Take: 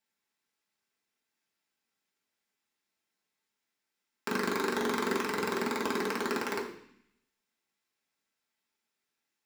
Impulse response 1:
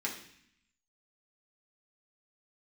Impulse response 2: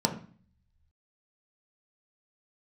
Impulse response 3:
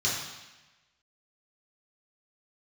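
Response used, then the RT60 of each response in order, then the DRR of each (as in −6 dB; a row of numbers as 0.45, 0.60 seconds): 1; 0.60, 0.45, 1.1 seconds; −3.5, 2.0, −7.0 decibels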